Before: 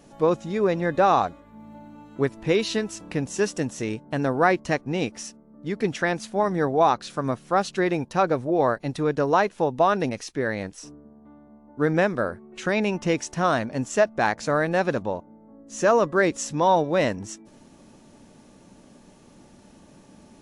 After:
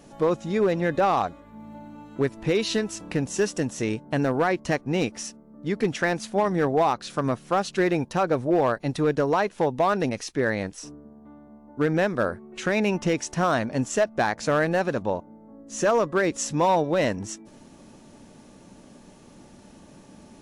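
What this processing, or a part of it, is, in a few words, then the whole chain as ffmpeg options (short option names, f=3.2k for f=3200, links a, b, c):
limiter into clipper: -af "alimiter=limit=-13.5dB:level=0:latency=1:release=224,asoftclip=type=hard:threshold=-16.5dB,volume=2dB"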